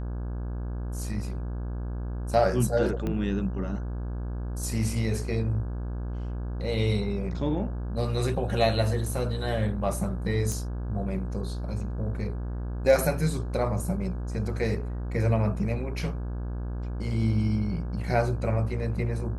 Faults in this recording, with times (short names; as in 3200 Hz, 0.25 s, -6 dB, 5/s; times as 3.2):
buzz 60 Hz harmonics 28 -32 dBFS
3.07 pop -19 dBFS
10.52 pop